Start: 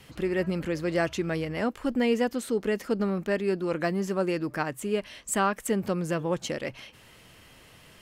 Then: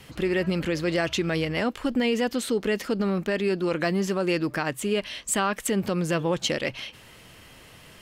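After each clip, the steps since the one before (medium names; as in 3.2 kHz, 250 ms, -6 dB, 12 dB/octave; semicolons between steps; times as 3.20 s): peak limiter -20 dBFS, peak gain reduction 6.5 dB; dynamic bell 3.5 kHz, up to +7 dB, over -52 dBFS, Q 0.99; trim +4 dB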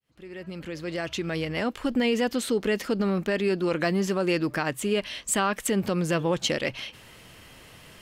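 fade-in on the opening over 2.02 s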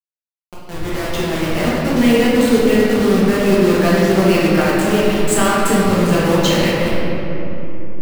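send-on-delta sampling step -27.5 dBFS; simulated room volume 200 m³, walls hard, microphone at 1.2 m; trim +3 dB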